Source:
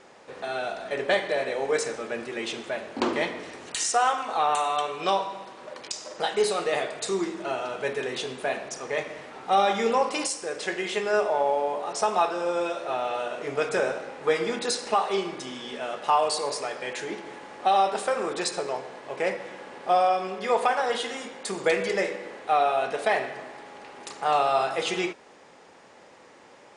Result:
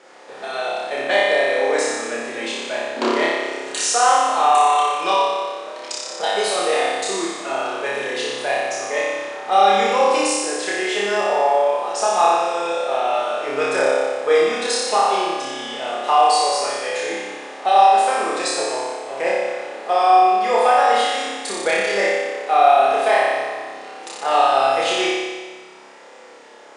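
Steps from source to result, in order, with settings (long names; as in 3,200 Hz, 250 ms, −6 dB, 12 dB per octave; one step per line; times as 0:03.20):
high-pass filter 300 Hz 12 dB per octave
flutter between parallel walls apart 5.1 metres, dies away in 1.4 s
level +2.5 dB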